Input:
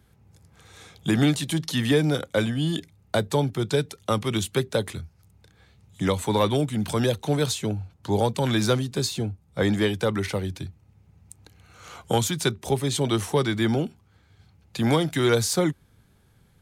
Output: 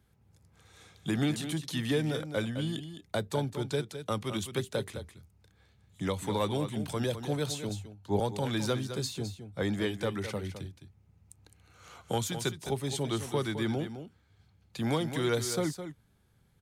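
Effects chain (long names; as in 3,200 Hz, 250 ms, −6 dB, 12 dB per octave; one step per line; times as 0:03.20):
single-tap delay 211 ms −10 dB
0:07.69–0:08.20: multiband upward and downward expander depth 70%
level −8.5 dB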